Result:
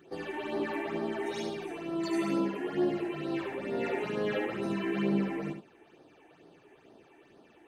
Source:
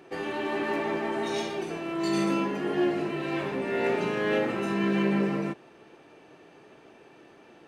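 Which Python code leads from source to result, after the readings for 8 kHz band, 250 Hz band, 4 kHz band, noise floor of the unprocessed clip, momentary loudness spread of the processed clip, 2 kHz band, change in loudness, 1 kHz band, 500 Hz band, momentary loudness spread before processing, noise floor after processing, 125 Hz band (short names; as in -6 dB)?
n/a, -4.0 dB, -6.0 dB, -54 dBFS, 8 LU, -6.5 dB, -4.5 dB, -6.5 dB, -4.5 dB, 7 LU, -60 dBFS, -5.0 dB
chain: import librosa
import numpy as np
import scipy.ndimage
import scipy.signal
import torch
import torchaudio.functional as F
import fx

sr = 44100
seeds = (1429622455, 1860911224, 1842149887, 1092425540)

p1 = fx.phaser_stages(x, sr, stages=8, low_hz=150.0, high_hz=2500.0, hz=2.2, feedback_pct=25)
p2 = p1 + fx.echo_single(p1, sr, ms=72, db=-7.5, dry=0)
y = p2 * 10.0 ** (-3.5 / 20.0)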